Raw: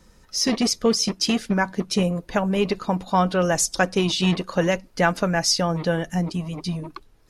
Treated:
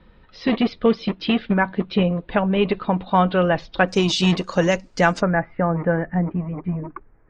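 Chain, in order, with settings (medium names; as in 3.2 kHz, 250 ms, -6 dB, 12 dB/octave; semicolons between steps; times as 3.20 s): steep low-pass 3.8 kHz 48 dB/octave, from 3.87 s 8.2 kHz, from 5.20 s 2.1 kHz; trim +2.5 dB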